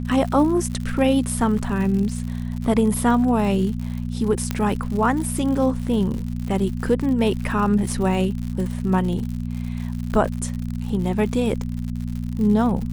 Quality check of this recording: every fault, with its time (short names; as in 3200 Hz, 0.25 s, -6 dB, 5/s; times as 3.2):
crackle 100/s -29 dBFS
hum 60 Hz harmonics 4 -27 dBFS
4.51 pop -9 dBFS